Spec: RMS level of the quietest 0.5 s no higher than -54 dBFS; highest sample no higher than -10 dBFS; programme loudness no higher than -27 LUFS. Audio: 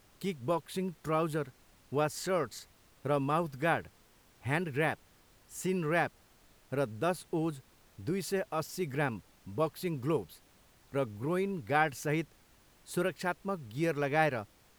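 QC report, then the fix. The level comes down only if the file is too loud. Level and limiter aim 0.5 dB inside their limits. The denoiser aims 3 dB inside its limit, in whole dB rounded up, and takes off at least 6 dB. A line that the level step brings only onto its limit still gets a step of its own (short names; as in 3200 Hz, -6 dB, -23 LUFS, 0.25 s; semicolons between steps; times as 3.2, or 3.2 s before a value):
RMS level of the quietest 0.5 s -63 dBFS: OK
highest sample -13.5 dBFS: OK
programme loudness -34.0 LUFS: OK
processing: none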